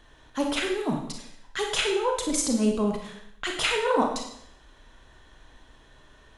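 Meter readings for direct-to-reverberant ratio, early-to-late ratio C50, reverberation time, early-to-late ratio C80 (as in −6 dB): 1.5 dB, 4.5 dB, 0.75 s, 8.0 dB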